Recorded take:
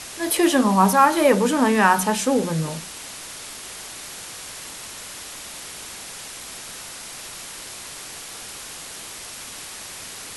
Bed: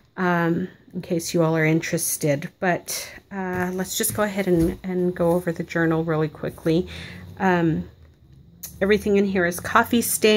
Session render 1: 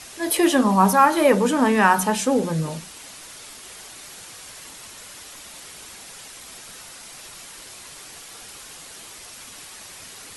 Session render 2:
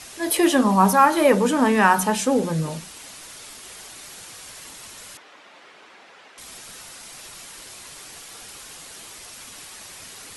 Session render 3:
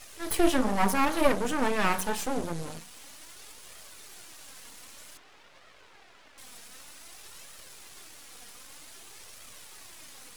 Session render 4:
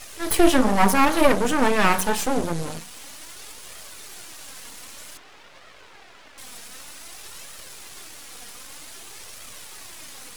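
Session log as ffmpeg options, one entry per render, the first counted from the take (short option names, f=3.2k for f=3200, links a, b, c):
-af "afftdn=nr=6:nf=-37"
-filter_complex "[0:a]asettb=1/sr,asplit=3[a][b][c];[a]atrim=end=5.174[d];[b]atrim=start=5.17:end=6.38,asetpts=PTS-STARTPTS,afade=t=in:d=0.004:c=qsin,afade=t=out:st=1.206:d=0.004:c=qsin,highpass=320,lowpass=2.3k[e];[c]atrim=start=6.376[f];[d][e]acrossfade=d=0.004:c1=hsin:c2=qsin[g];[g][f]acrossfade=d=0.004:c1=qsin:c2=hsin"
-af "flanger=delay=1.5:depth=2.8:regen=40:speed=0.53:shape=triangular,aeval=exprs='max(val(0),0)':c=same"
-af "volume=7.5dB,alimiter=limit=-3dB:level=0:latency=1"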